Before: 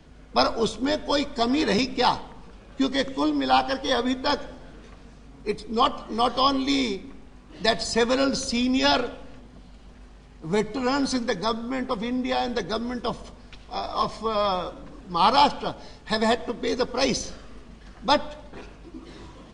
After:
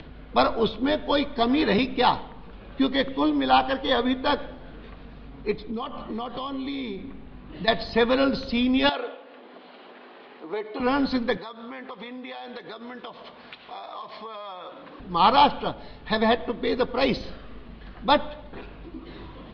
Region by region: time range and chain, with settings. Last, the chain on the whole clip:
5.7–7.68 compressor 5:1, threshold -31 dBFS + LPF 5300 Hz + bell 150 Hz +4 dB 1.8 oct
8.89–10.8 HPF 330 Hz 24 dB/oct + air absorption 100 m + compressor 4:1, threshold -27 dBFS
11.37–15 weighting filter A + compressor 8:1, threshold -35 dBFS
whole clip: steep low-pass 4200 Hz 48 dB/oct; upward compressor, threshold -37 dBFS; gain +1 dB

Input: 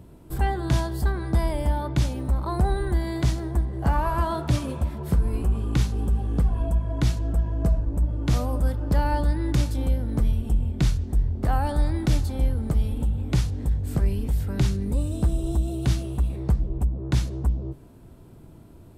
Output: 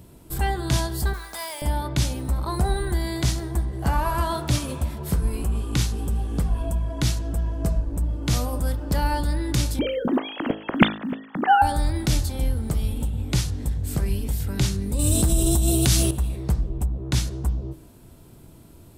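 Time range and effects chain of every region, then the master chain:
1.13–1.62 HPF 890 Hz + modulation noise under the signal 18 dB
9.79–11.62 sine-wave speech + short-mantissa float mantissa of 8-bit
14.99–16.11 high shelf 5500 Hz +8.5 dB + fast leveller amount 70%
whole clip: high shelf 2700 Hz +10.5 dB; de-hum 53.34 Hz, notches 36

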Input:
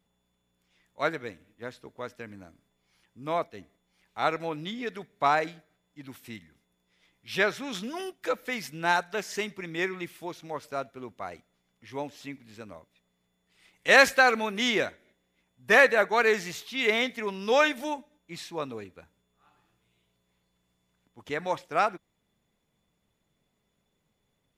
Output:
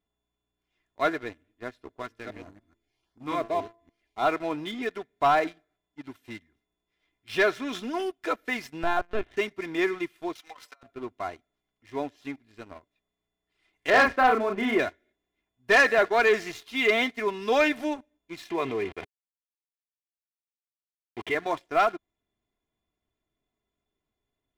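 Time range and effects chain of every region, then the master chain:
2.02–4.28 reverse delay 0.144 s, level -2.5 dB + LFO notch saw up 1.7 Hz 460–3000 Hz + de-hum 113.1 Hz, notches 10
8.83–9.37 tilt shelf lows +3.5 dB, about 690 Hz + LPC vocoder at 8 kHz pitch kept
10.35–10.83 HPF 1200 Hz + negative-ratio compressor -46 dBFS, ratio -0.5 + comb 3.9 ms, depth 85%
13.9–14.79 LPF 1600 Hz + doubler 35 ms -4 dB
18.5–21.35 level-crossing sampler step -49.5 dBFS + speaker cabinet 140–3500 Hz, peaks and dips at 270 Hz -8 dB, 410 Hz +4 dB, 570 Hz -5 dB, 1400 Hz -6 dB, 2100 Hz +8 dB, 3200 Hz +5 dB + fast leveller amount 50%
whole clip: high shelf 5100 Hz -12 dB; comb 2.9 ms, depth 62%; sample leveller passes 2; gain -5 dB

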